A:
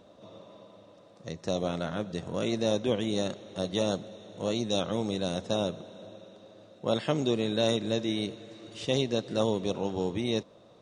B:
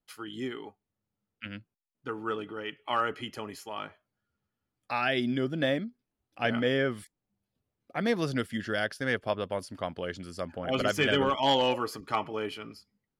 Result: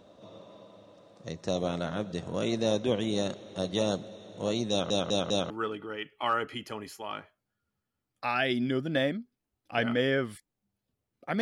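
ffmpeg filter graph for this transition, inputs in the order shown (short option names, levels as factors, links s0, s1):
-filter_complex "[0:a]apad=whole_dur=11.41,atrim=end=11.41,asplit=4[s0][s1][s2][s3];[s0]atrim=end=4.902[s4];[s1]atrim=start=4.698:end=4.902[s5];[s2]atrim=start=4.698:end=4.902[s6];[s3]atrim=start=4.698:end=4.902[s7];[1:a]atrim=start=2.168:end=8.08[s8];[s4][s5]acrossfade=d=0.004:c1=hsin:c2=hsin[s9];[s9][s6]acrossfade=d=0.004:c1=hsin:c2=hsin[s10];[s10][s7]acrossfade=d=0.004:c1=hsin:c2=hsin[s11];[s11][s8]acrossfade=d=0.004:c1=hsin:c2=hsin"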